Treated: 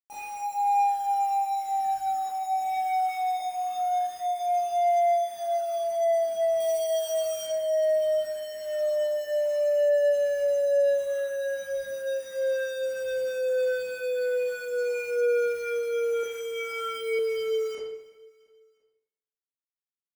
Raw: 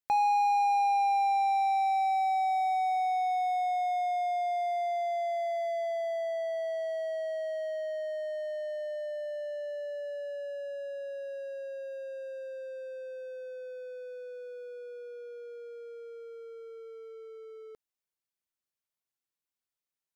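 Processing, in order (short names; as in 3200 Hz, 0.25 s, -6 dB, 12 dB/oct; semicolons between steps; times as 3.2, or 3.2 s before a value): opening faded in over 1.37 s; downsampling 22050 Hz; limiter -29.5 dBFS, peak gain reduction 7.5 dB; compressor 2.5:1, threshold -42 dBFS, peak gain reduction 6.5 dB; 2.62–3.37 HPF 660 Hz 6 dB/oct; companded quantiser 4-bit; 6.6–7.47 high shelf 2900 Hz +11 dB; feedback echo 0.342 s, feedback 51%, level -23 dB; reverb RT60 0.85 s, pre-delay 22 ms, DRR -10.5 dB; soft clip -21 dBFS, distortion -22 dB; bell 4100 Hz -11.5 dB 0.39 oct; 16.21–17.19 flutter echo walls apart 3.9 m, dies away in 0.28 s; gain +4.5 dB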